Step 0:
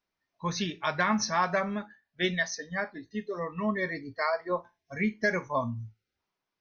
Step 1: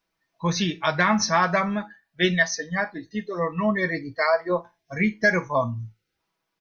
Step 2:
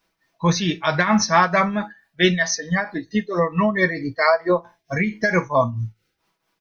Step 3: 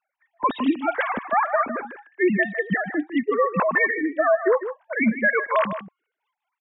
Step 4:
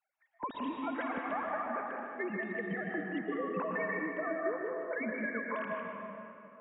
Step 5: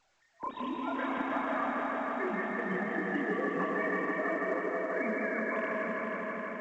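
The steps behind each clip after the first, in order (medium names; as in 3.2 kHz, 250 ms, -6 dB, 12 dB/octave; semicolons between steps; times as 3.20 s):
comb 6.1 ms, depth 45%; trim +6 dB
in parallel at +0.5 dB: compression, threshold -27 dBFS, peak gain reduction 12.5 dB; on the sum: tremolo triangle 4.5 Hz, depth 70%; trim +4 dB
formants replaced by sine waves; peak limiter -11.5 dBFS, peak gain reduction 9 dB; delay 154 ms -11 dB
fade out at the end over 1.76 s; compression, threshold -29 dBFS, peak gain reduction 13.5 dB; reverberation RT60 3.0 s, pre-delay 109 ms, DRR 0 dB; trim -7 dB
chorus voices 6, 1.3 Hz, delay 30 ms, depth 3 ms; multi-head delay 161 ms, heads all three, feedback 75%, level -8.5 dB; trim +3.5 dB; A-law 128 kbps 16 kHz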